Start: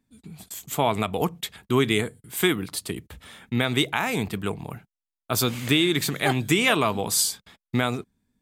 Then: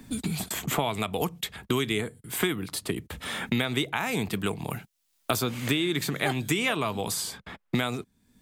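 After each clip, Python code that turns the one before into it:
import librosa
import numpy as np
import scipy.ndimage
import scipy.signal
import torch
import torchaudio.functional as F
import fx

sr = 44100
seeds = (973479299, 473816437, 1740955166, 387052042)

y = fx.band_squash(x, sr, depth_pct=100)
y = y * librosa.db_to_amplitude(-4.5)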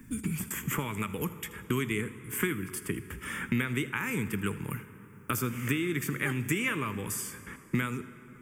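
y = fx.fixed_phaser(x, sr, hz=1700.0, stages=4)
y = y + 10.0 ** (-18.5 / 20.0) * np.pad(y, (int(80 * sr / 1000.0), 0))[:len(y)]
y = fx.rev_plate(y, sr, seeds[0], rt60_s=4.0, hf_ratio=0.55, predelay_ms=0, drr_db=13.0)
y = y * librosa.db_to_amplitude(-1.0)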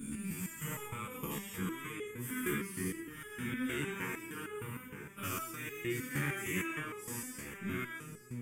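y = fx.spec_dilate(x, sr, span_ms=240)
y = fx.echo_alternate(y, sr, ms=472, hz=810.0, feedback_pct=55, wet_db=-8)
y = fx.resonator_held(y, sr, hz=6.5, low_hz=72.0, high_hz=420.0)
y = y * librosa.db_to_amplitude(-3.5)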